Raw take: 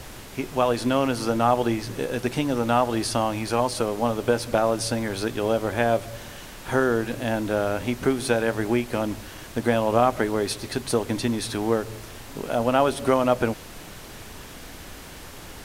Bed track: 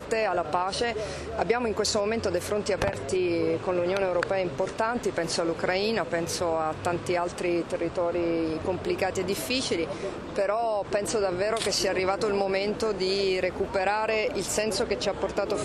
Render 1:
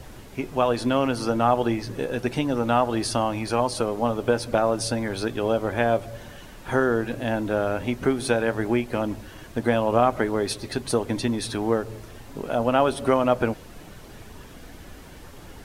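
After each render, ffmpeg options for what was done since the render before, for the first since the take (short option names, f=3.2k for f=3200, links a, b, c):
-af "afftdn=nr=8:nf=-41"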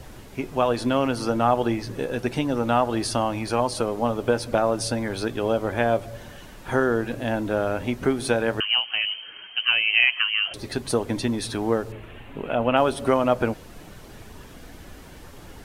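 -filter_complex "[0:a]asettb=1/sr,asplit=3[a][b][c];[a]atrim=end=8.604[d];[b]atrim=start=8.6:end=10.54,asetpts=PTS-STARTPTS,afade=t=in:d=0.004:c=qsin,afade=t=out:st=1.936:d=0.004:c=qsin,lowpass=f=2.7k:t=q:w=0.5098,lowpass=f=2.7k:t=q:w=0.6013,lowpass=f=2.7k:t=q:w=0.9,lowpass=f=2.7k:t=q:w=2.563,afreqshift=-3200[e];[c]atrim=start=10.536[f];[d][e]acrossfade=d=0.004:c1=hsin:c2=qsin[g];[g][f]acrossfade=d=0.004:c1=qsin:c2=hsin,asettb=1/sr,asplit=3[h][i][j];[h]atrim=end=11.924[k];[i]atrim=start=11.92:end=12.77,asetpts=PTS-STARTPTS,afade=t=in:d=0.004:c=qsin,afade=t=out:st=0.846:d=0.004:c=qsin,highshelf=f=3.8k:t=q:w=3:g=-11[l];[j]atrim=start=12.766[m];[k][l]acrossfade=d=0.004:c1=hsin:c2=qsin[n];[n][m]acrossfade=d=0.004:c1=qsin:c2=hsin"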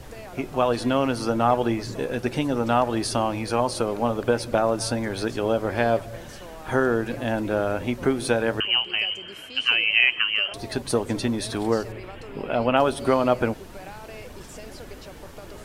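-filter_complex "[1:a]volume=-16dB[a];[0:a][a]amix=inputs=2:normalize=0"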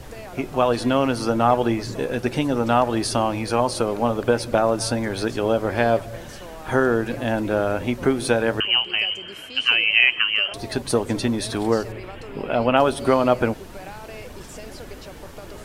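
-af "volume=2.5dB"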